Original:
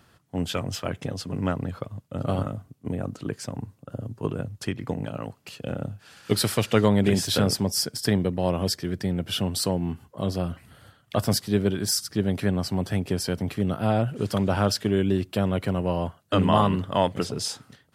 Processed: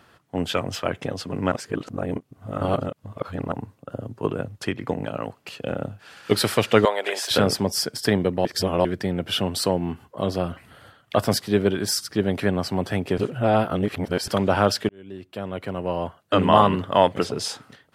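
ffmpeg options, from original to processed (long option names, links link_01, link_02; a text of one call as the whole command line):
ffmpeg -i in.wav -filter_complex "[0:a]asettb=1/sr,asplit=3[link_01][link_02][link_03];[link_01]atrim=end=6.854[link_04];[link_02]atrim=start=6.85:end=7.31,asetpts=PTS-STARTPTS,afade=type=in:duration=0.004:curve=qsin,afade=type=out:start_time=0.456:duration=0.004:curve=qsin,highpass=frequency=530:width=0.5412,highpass=frequency=530:width=1.3066[link_05];[link_03]atrim=start=7.306[link_06];[link_04][link_05]acrossfade=duration=0.004:curve1=hsin:curve2=qsin[link_07];[link_07][link_06]acrossfade=duration=0.004:curve1=qsin:curve2=hsin,asplit=8[link_08][link_09][link_10][link_11][link_12][link_13][link_14][link_15];[link_08]atrim=end=1.522[link_16];[link_09]atrim=start=1.518:end=3.522,asetpts=PTS-STARTPTS,areverse[link_17];[link_10]atrim=start=3.518:end=8.452[link_18];[link_11]atrim=start=8.448:end=8.852,asetpts=PTS-STARTPTS,areverse[link_19];[link_12]atrim=start=8.848:end=13.182[link_20];[link_13]atrim=start=13.178:end=14.282,asetpts=PTS-STARTPTS,areverse[link_21];[link_14]atrim=start=14.278:end=14.89,asetpts=PTS-STARTPTS,afade=type=out:start_time=0.608:duration=0.004:curve=hsin[link_22];[link_15]atrim=start=14.89,asetpts=PTS-STARTPTS,afade=type=in:duration=1.69[link_23];[link_16][link_17]acrossfade=duration=0.004:curve1=hsin:curve2=hsin[link_24];[link_24][link_18]acrossfade=duration=0.004:curve1=hsin:curve2=hsin[link_25];[link_25][link_19]acrossfade=duration=0.004:curve1=hsin:curve2=hsin[link_26];[link_26][link_20]acrossfade=duration=0.004:curve1=hsin:curve2=hsin[link_27];[link_27][link_21]acrossfade=duration=0.004:curve1=hsin:curve2=hsin[link_28];[link_22][link_23]concat=n=2:v=0:a=1[link_29];[link_28][link_29]acrossfade=duration=0.004:curve1=hsin:curve2=hsin,bass=frequency=250:gain=-8,treble=frequency=4000:gain=-7,volume=6dB" out.wav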